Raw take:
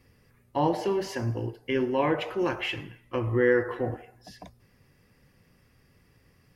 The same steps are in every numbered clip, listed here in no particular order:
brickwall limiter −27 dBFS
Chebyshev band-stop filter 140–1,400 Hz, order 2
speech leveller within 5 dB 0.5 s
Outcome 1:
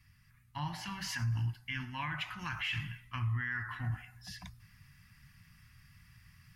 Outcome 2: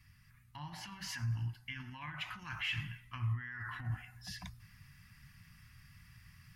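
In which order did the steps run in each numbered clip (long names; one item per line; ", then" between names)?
speech leveller, then Chebyshev band-stop filter, then brickwall limiter
brickwall limiter, then speech leveller, then Chebyshev band-stop filter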